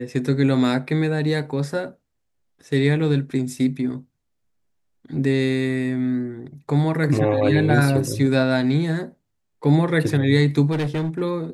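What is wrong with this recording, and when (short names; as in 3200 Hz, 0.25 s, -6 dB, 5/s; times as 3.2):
10.71–11.22 clipped -20 dBFS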